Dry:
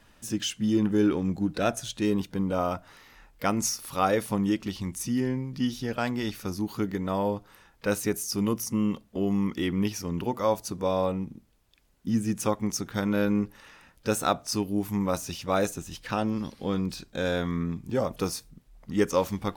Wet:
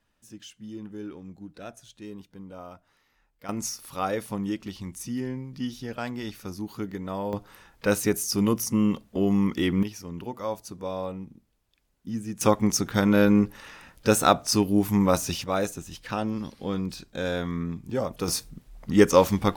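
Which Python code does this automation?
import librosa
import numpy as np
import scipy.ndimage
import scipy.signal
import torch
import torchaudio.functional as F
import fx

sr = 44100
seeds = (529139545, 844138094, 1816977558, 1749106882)

y = fx.gain(x, sr, db=fx.steps((0.0, -15.0), (3.49, -4.0), (7.33, 3.5), (9.83, -6.0), (12.41, 6.0), (15.44, -1.0), (18.28, 7.0)))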